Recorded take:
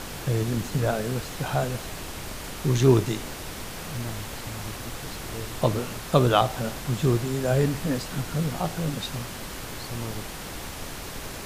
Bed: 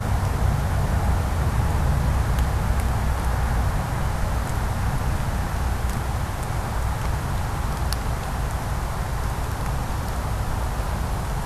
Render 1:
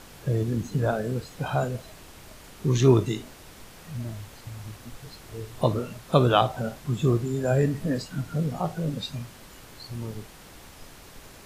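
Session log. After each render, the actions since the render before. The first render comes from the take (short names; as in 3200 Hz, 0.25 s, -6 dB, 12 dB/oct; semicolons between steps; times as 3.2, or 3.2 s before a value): noise print and reduce 11 dB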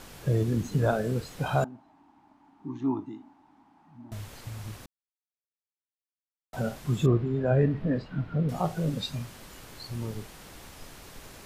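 1.64–4.12 double band-pass 490 Hz, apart 1.6 oct; 4.86–6.53 mute; 7.06–8.49 air absorption 370 m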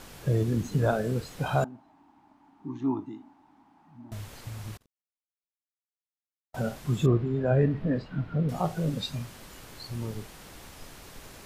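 4.77–6.6 gate -44 dBFS, range -35 dB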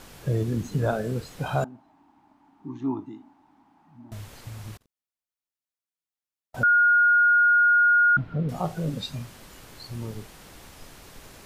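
6.63–8.17 bleep 1430 Hz -15 dBFS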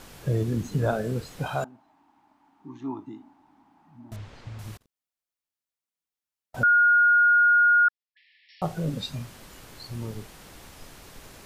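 1.47–3.07 low shelf 460 Hz -7.5 dB; 4.16–4.59 air absorption 140 m; 7.88–8.62 brick-wall FIR band-pass 1700–5600 Hz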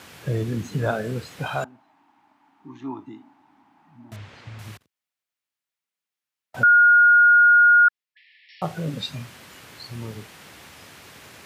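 HPF 78 Hz 24 dB/oct; bell 2200 Hz +6.5 dB 1.9 oct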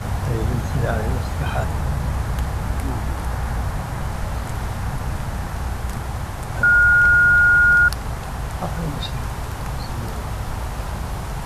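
add bed -1.5 dB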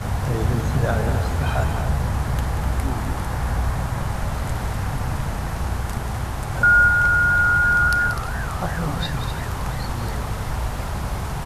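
loudspeakers at several distances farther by 63 m -10 dB, 86 m -10 dB; warbling echo 0.341 s, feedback 77%, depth 97 cents, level -19.5 dB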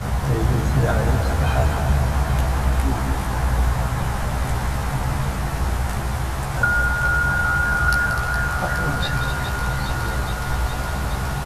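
doubler 15 ms -3.5 dB; thinning echo 0.416 s, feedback 84%, high-pass 420 Hz, level -9 dB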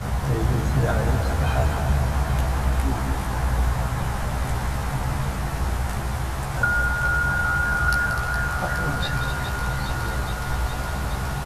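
gain -2.5 dB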